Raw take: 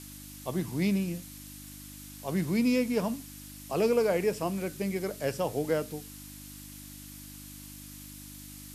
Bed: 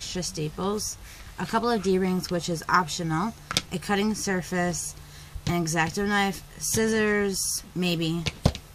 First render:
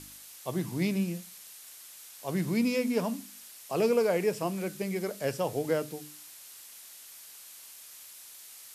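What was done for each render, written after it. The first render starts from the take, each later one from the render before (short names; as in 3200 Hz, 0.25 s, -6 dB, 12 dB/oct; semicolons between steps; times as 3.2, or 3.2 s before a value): de-hum 50 Hz, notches 6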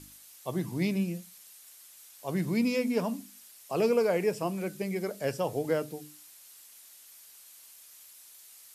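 denoiser 6 dB, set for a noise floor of -50 dBFS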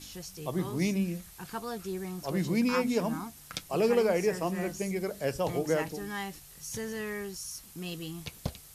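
add bed -13 dB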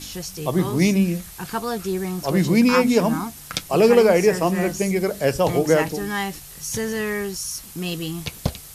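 gain +11 dB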